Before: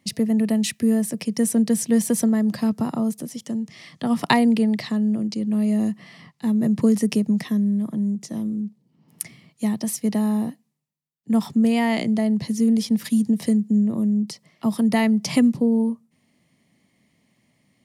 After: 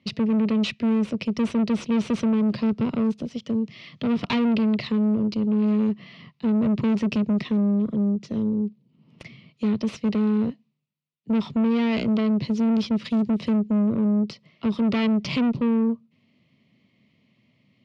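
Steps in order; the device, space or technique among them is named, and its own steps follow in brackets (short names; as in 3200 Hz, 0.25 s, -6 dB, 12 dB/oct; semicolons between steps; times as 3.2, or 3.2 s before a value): guitar amplifier (tube stage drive 25 dB, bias 0.75; tone controls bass +6 dB, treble +7 dB; speaker cabinet 110–3700 Hz, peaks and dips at 170 Hz -5 dB, 300 Hz -4 dB, 800 Hz -9 dB, 1700 Hz -8 dB, 2600 Hz +4 dB); gain +5 dB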